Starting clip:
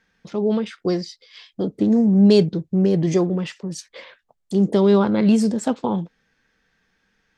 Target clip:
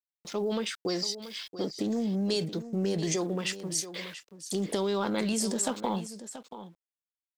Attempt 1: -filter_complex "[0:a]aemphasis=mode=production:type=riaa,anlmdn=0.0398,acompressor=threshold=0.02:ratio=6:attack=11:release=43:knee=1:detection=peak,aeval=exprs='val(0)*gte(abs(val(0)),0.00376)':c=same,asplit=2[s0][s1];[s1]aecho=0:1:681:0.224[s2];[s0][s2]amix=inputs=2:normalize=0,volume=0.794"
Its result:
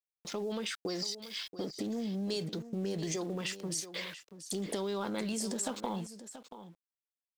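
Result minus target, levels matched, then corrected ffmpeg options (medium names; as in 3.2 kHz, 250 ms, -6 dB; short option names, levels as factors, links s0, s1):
compression: peak gain reduction +6 dB
-filter_complex "[0:a]aemphasis=mode=production:type=riaa,anlmdn=0.0398,acompressor=threshold=0.0473:ratio=6:attack=11:release=43:knee=1:detection=peak,aeval=exprs='val(0)*gte(abs(val(0)),0.00376)':c=same,asplit=2[s0][s1];[s1]aecho=0:1:681:0.224[s2];[s0][s2]amix=inputs=2:normalize=0,volume=0.794"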